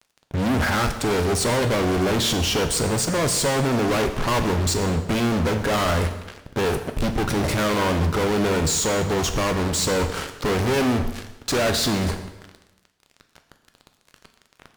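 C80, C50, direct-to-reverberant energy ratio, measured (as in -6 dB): 11.5 dB, 10.0 dB, 6.5 dB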